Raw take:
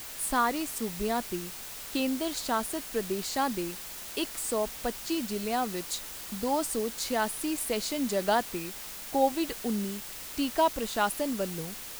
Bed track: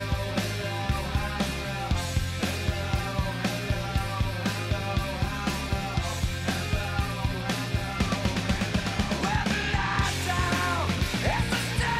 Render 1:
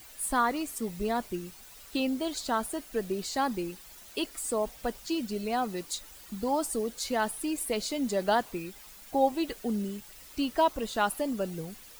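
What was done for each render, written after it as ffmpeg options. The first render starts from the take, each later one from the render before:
-af "afftdn=nr=11:nf=-42"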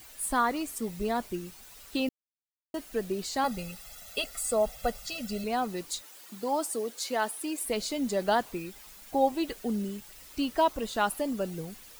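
-filter_complex "[0:a]asettb=1/sr,asplit=3[a][b][c];[a]atrim=end=3.444[d];[b]atrim=start=3.44:end=5.44,asetpts=PTS-STARTPTS,afade=t=in:d=0.004:c=qsin,afade=t=out:st=1.996:d=0.004:c=qsin,aecho=1:1:1.5:0.93,atrim=end_sample=88200[e];[c]atrim=start=5.436[f];[d][e]acrossfade=d=0.004:c1=hsin:c2=qsin[g];[g][f]acrossfade=d=0.004:c1=qsin:c2=hsin,asettb=1/sr,asplit=3[h][i][j];[h]atrim=end=6.014[k];[i]atrim=start=6.01:end=7.65,asetpts=PTS-STARTPTS,afade=t=in:d=0.004:c=qsin,afade=t=out:st=1.636:d=0.004:c=qsin,highpass=290[l];[j]atrim=start=7.646[m];[k][l]acrossfade=d=0.004:c1=hsin:c2=qsin[n];[n][m]acrossfade=d=0.004:c1=qsin:c2=hsin,asplit=3[o][p][q];[o]atrim=end=2.09,asetpts=PTS-STARTPTS,afade=t=out:st=2.086:d=0.004:c=hsin[r];[p]atrim=start=2.09:end=2.74,asetpts=PTS-STARTPTS,volume=0[s];[q]atrim=start=2.74,asetpts=PTS-STARTPTS,afade=t=in:d=0.004:c=hsin[t];[r][s][t]concat=n=3:v=0:a=1"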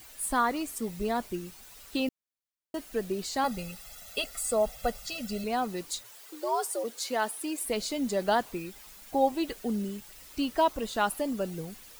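-filter_complex "[0:a]asplit=3[a][b][c];[a]afade=t=out:st=6.03:d=0.02[d];[b]afreqshift=110,afade=t=in:st=6.03:d=0.02,afade=t=out:st=6.83:d=0.02[e];[c]afade=t=in:st=6.83:d=0.02[f];[d][e][f]amix=inputs=3:normalize=0"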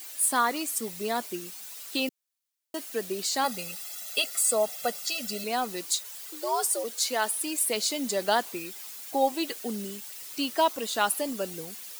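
-af "highpass=240,highshelf=f=2.5k:g=9.5"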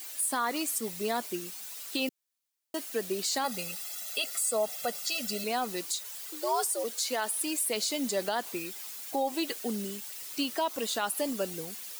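-af "alimiter=limit=-20dB:level=0:latency=1:release=87"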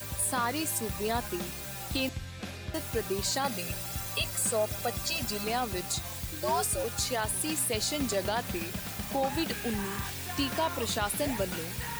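-filter_complex "[1:a]volume=-11.5dB[a];[0:a][a]amix=inputs=2:normalize=0"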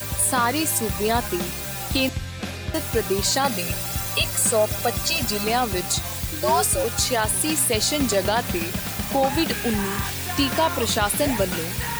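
-af "volume=9dB"

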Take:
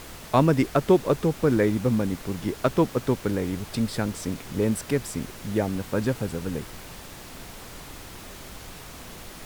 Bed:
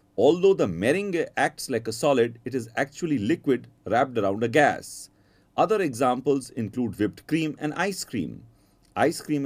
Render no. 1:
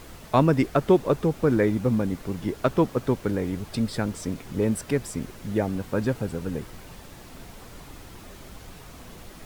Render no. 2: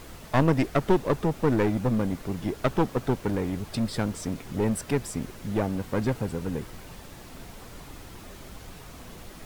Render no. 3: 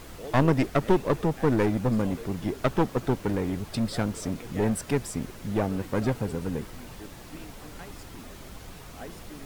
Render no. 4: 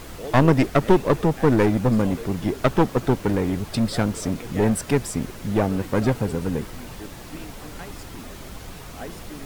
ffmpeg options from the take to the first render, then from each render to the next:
-af "afftdn=nr=6:nf=-42"
-af "aeval=exprs='clip(val(0),-1,0.0596)':c=same"
-filter_complex "[1:a]volume=-21.5dB[a];[0:a][a]amix=inputs=2:normalize=0"
-af "volume=5.5dB,alimiter=limit=-2dB:level=0:latency=1"

